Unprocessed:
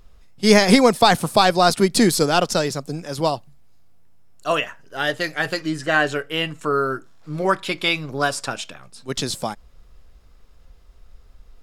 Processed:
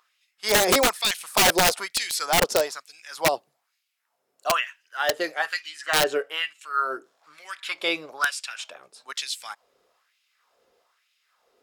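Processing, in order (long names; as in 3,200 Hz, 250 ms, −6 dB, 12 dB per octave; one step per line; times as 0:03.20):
auto-filter high-pass sine 1.1 Hz 400–2,700 Hz
wrap-around overflow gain 6.5 dB
level −5.5 dB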